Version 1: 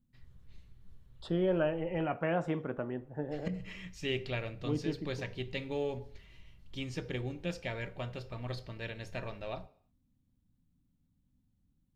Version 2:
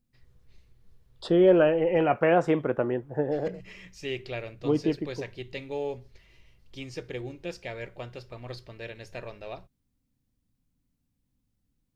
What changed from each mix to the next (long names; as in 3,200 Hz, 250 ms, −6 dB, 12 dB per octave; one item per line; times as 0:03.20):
second voice +9.0 dB
reverb: off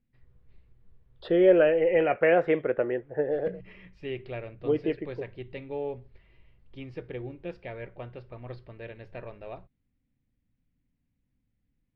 second voice: add octave-band graphic EQ 125/250/500/1,000/2,000/4,000 Hz −7/−6/+6/−9/+10/+4 dB
master: add high-frequency loss of the air 440 metres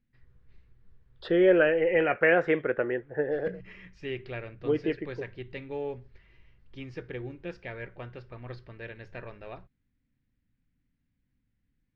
master: add graphic EQ with 15 bands 630 Hz −4 dB, 1,600 Hz +6 dB, 6,300 Hz +11 dB